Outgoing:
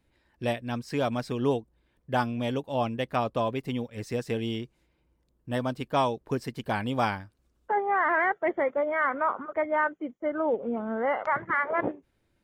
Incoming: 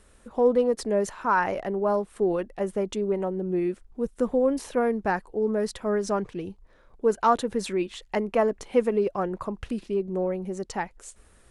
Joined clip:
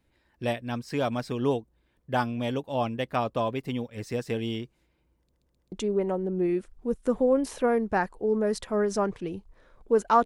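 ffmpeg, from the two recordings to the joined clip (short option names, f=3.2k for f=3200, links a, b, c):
-filter_complex "[0:a]apad=whole_dur=10.25,atrim=end=10.25,asplit=4[a][b][c][d];[a]atrim=end=5.332[e];[b]atrim=start=5.198:end=5.332[f];[c]atrim=start=5.198:end=5.332[g];[d]atrim=start=5.198:end=5.332[h];[1:a]atrim=start=2.848:end=7.38[i];[e][f]acrossfade=d=0.004:c1=hsin:c2=hsin[j];[j][g]acrossfade=d=0.004:c1=hsin:c2=hsin[k];[k][h]acrossfade=d=0.004:c1=hsin:c2=hsin[l];[l][i]acrossfade=d=0.004:c1=hsin:c2=hsin"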